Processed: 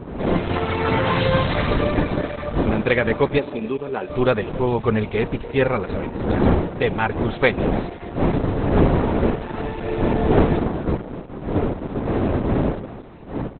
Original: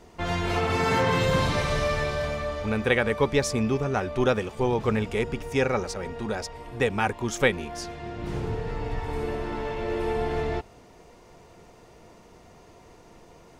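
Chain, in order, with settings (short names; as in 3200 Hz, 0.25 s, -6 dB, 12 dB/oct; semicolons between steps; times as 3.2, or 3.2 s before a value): wind noise 410 Hz -26 dBFS; 8.95–9.61 bell 1500 Hz +2 dB 2.9 oct; AGC gain up to 7 dB; 3.38–4.1 speaker cabinet 280–7000 Hz, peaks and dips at 690 Hz -8 dB, 1300 Hz -10 dB, 2100 Hz -8 dB, 3800 Hz -4 dB; speakerphone echo 0.28 s, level -19 dB; gain -1 dB; Opus 8 kbps 48000 Hz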